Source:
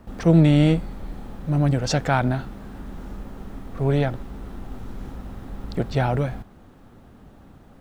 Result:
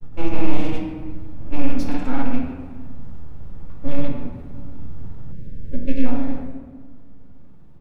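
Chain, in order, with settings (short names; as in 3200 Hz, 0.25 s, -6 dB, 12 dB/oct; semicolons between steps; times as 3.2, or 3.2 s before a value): rattling part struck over -19 dBFS, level -17 dBFS; resonant low shelf 170 Hz +10 dB, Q 3; full-wave rectifier; grains 0.1 s, grains 20/s; reverb RT60 1.6 s, pre-delay 4 ms, DRR -1 dB; spectral delete 5.32–6.05, 630–1500 Hz; gain -12 dB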